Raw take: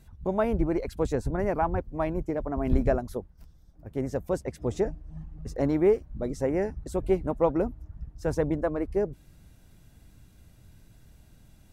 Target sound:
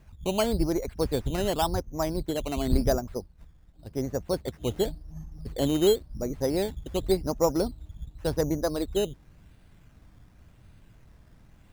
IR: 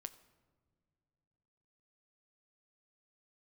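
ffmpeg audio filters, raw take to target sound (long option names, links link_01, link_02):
-filter_complex "[0:a]acrossover=split=3000[link_01][link_02];[link_02]acompressor=threshold=-59dB:ratio=4:attack=1:release=60[link_03];[link_01][link_03]amix=inputs=2:normalize=0,acrusher=samples=10:mix=1:aa=0.000001:lfo=1:lforange=6:lforate=0.91"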